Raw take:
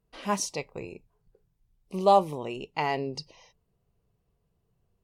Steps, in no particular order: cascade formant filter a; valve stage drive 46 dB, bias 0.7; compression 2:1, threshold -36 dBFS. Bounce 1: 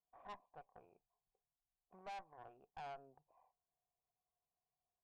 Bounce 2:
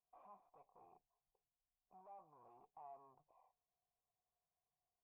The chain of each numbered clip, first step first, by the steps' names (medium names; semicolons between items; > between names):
compression > cascade formant filter > valve stage; compression > valve stage > cascade formant filter